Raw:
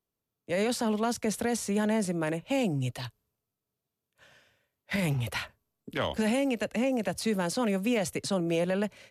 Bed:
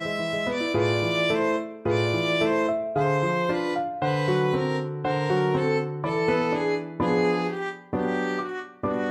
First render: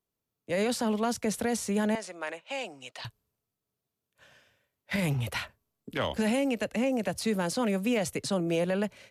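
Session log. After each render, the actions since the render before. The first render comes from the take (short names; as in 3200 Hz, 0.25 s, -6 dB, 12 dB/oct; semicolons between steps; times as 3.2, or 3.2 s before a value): 1.95–3.05 BPF 750–6700 Hz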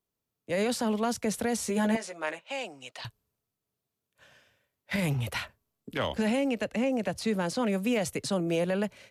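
1.58–2.39 doubler 13 ms -3.5 dB; 6.14–7.72 high shelf 9800 Hz -10 dB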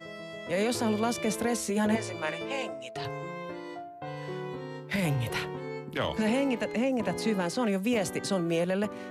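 add bed -14 dB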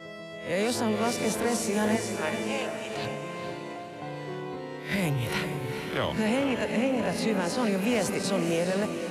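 spectral swells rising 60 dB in 0.35 s; diffused feedback echo 0.459 s, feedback 47%, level -7 dB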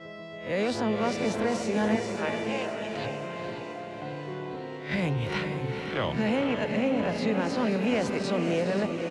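air absorption 110 m; feedback echo 0.531 s, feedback 57%, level -11 dB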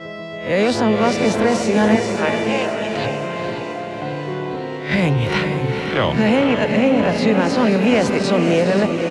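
gain +11 dB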